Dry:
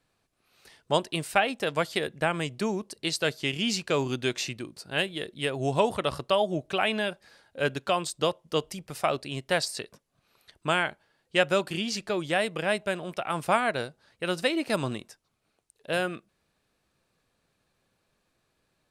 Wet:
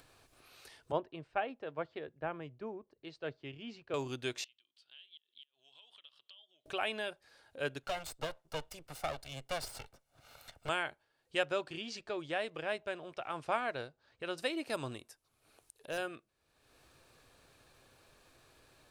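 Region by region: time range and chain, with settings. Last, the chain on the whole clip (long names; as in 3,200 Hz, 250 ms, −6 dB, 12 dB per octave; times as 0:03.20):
0:00.92–0:03.94: head-to-tape spacing loss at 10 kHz 41 dB + multiband upward and downward expander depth 70%
0:04.44–0:06.66: downward compressor, threshold −39 dBFS + resonant band-pass 3,200 Hz, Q 9.6 + gate with flip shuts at −39 dBFS, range −26 dB
0:07.83–0:10.69: lower of the sound and its delayed copy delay 1.4 ms + multiband upward and downward compressor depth 40%
0:11.43–0:14.38: one scale factor per block 7 bits + high-frequency loss of the air 81 metres
0:14.95–0:15.98: parametric band 11,000 Hz +7 dB 0.56 octaves + hard clipping −23.5 dBFS
whole clip: parametric band 190 Hz −13 dB 0.4 octaves; notch filter 2,000 Hz, Q 24; upward compression, threshold −38 dBFS; level −9 dB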